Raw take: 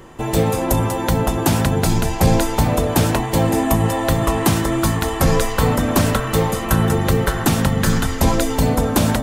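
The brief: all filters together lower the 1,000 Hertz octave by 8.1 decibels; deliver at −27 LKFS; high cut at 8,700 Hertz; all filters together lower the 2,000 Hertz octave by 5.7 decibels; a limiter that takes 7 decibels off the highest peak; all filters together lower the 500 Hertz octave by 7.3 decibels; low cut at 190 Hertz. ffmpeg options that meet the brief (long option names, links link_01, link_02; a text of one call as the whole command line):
ffmpeg -i in.wav -af "highpass=190,lowpass=8700,equalizer=frequency=500:width_type=o:gain=-7,equalizer=frequency=1000:width_type=o:gain=-7,equalizer=frequency=2000:width_type=o:gain=-4.5,volume=-1.5dB,alimiter=limit=-16dB:level=0:latency=1" out.wav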